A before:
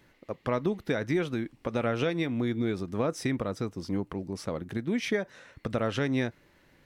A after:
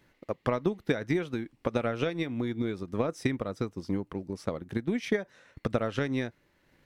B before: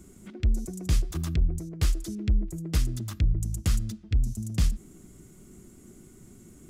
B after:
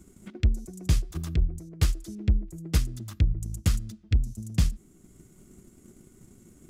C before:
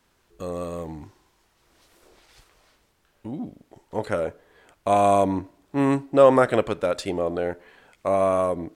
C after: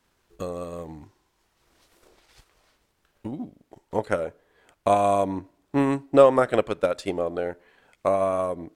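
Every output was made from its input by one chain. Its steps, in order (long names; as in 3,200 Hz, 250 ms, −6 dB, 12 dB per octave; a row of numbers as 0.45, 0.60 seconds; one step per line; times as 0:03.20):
transient designer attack +7 dB, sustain −3 dB
level −3.5 dB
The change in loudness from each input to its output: −1.0, +0.5, −1.0 LU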